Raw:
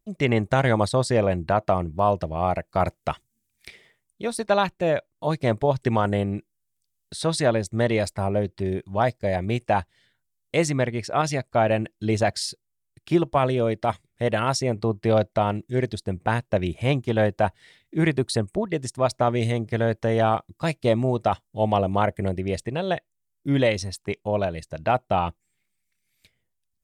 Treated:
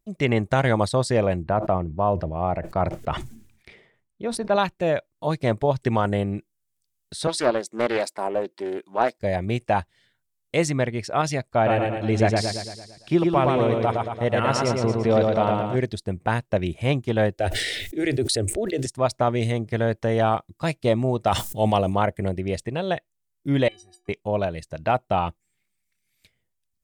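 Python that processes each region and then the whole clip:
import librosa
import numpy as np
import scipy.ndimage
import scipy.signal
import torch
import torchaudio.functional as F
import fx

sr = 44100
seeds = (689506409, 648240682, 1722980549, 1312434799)

y = fx.chain(x, sr, fx.lowpass(hz=1200.0, slope=6),
    fx.sustainer(db_per_s=81.0), at=(1.43, 4.56))
y = fx.chain(y, sr, fx.highpass(hz=260.0, slope=24),
    fx.peak_eq(hz=980.0, db=4.5, octaves=0.29),
    fx.doppler_dist(depth_ms=0.25), at=(7.27, 9.19))
y = fx.chain(y, sr, fx.high_shelf(hz=8900.0, db=-11.0),
    fx.echo_feedback(ms=113, feedback_pct=54, wet_db=-3.0), at=(11.54, 15.76))
y = fx.chain(y, sr, fx.fixed_phaser(hz=420.0, stages=4),
    fx.sustainer(db_per_s=27.0), at=(17.35, 18.86))
y = fx.chain(y, sr, fx.high_shelf(hz=4400.0, db=11.5),
    fx.sustainer(db_per_s=58.0), at=(21.27, 21.94))
y = fx.chain(y, sr, fx.notch(hz=1400.0, q=7.6),
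    fx.stiff_resonator(f0_hz=350.0, decay_s=0.37, stiffness=0.03),
    fx.band_squash(depth_pct=100), at=(23.68, 24.09))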